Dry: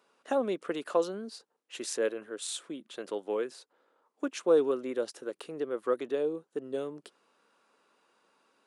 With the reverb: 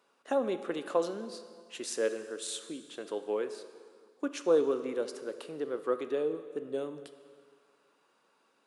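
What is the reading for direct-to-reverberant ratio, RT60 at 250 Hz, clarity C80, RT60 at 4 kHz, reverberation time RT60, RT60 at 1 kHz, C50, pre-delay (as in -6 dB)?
9.5 dB, 2.0 s, 12.0 dB, 1.8 s, 2.0 s, 2.0 s, 11.0 dB, 5 ms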